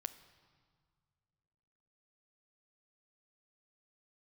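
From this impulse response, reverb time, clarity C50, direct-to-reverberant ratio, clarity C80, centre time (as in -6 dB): not exponential, 13.5 dB, 11.5 dB, 15.0 dB, 8 ms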